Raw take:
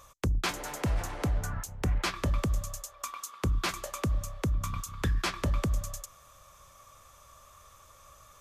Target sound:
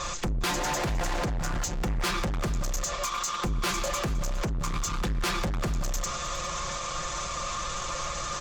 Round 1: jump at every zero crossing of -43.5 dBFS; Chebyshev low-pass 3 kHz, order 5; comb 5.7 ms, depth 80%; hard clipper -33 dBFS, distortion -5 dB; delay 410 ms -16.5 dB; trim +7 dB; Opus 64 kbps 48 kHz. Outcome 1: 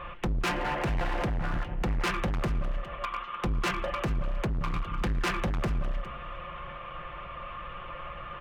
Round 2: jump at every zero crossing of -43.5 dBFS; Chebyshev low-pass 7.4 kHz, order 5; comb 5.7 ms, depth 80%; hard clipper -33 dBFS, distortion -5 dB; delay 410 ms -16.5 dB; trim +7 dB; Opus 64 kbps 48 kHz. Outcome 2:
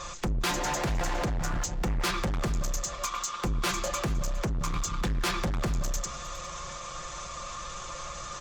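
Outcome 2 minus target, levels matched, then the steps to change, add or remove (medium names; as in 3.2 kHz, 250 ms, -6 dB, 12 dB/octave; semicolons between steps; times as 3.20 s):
jump at every zero crossing: distortion -7 dB
change: jump at every zero crossing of -35.5 dBFS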